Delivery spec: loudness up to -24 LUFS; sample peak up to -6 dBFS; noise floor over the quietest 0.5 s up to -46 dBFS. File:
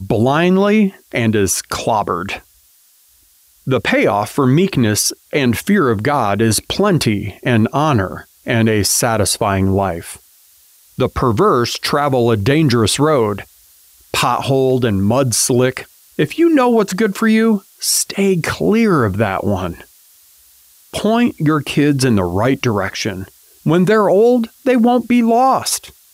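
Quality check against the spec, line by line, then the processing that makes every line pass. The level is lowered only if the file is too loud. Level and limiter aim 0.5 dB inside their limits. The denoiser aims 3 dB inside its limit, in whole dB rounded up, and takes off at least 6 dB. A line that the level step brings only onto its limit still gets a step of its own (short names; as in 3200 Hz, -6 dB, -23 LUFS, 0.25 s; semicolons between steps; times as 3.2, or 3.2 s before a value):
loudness -15.0 LUFS: fail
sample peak -5.0 dBFS: fail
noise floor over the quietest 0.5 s -52 dBFS: OK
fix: gain -9.5 dB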